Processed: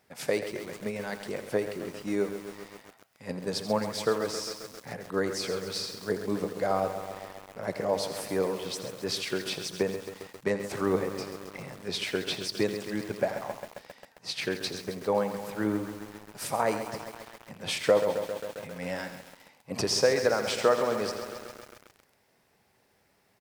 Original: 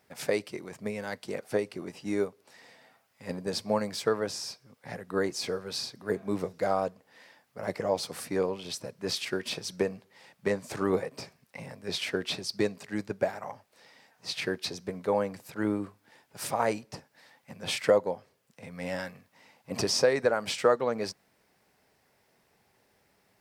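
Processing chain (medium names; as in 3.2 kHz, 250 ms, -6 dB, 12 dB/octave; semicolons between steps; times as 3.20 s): delay 84 ms -12.5 dB; bit-crushed delay 134 ms, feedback 80%, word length 7-bit, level -9.5 dB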